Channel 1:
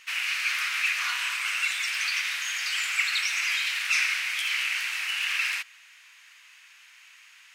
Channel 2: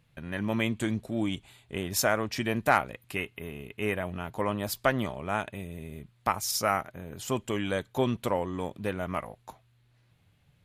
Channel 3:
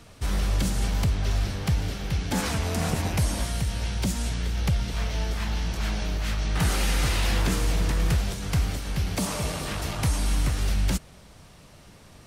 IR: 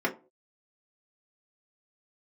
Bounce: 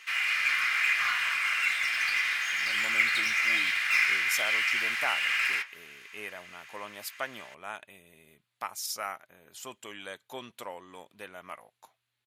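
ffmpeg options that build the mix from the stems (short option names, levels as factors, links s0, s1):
-filter_complex "[0:a]volume=0.631,asplit=2[s0][s1];[s1]volume=0.596[s2];[1:a]highpass=f=1400:p=1,adelay=2350,volume=0.596[s3];[s0]aeval=exprs='0.0282*(abs(mod(val(0)/0.0282+3,4)-2)-1)':c=same,acompressor=threshold=0.00562:ratio=3,volume=1[s4];[3:a]atrim=start_sample=2205[s5];[s2][s5]afir=irnorm=-1:irlink=0[s6];[s3][s4][s6]amix=inputs=3:normalize=0"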